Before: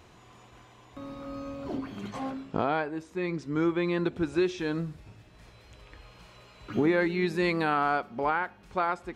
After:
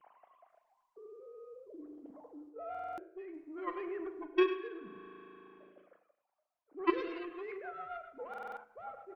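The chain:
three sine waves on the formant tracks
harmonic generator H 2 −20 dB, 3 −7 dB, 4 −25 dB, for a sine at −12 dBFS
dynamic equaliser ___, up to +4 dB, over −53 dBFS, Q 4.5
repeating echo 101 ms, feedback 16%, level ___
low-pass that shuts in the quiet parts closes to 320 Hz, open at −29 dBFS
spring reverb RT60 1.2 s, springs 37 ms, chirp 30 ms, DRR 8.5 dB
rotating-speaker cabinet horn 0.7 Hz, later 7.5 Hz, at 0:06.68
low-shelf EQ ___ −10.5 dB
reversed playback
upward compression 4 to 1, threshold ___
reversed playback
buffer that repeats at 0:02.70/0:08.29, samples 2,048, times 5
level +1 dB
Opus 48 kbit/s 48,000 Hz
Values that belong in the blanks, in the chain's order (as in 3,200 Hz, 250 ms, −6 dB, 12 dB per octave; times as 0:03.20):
450 Hz, −12 dB, 220 Hz, −46 dBFS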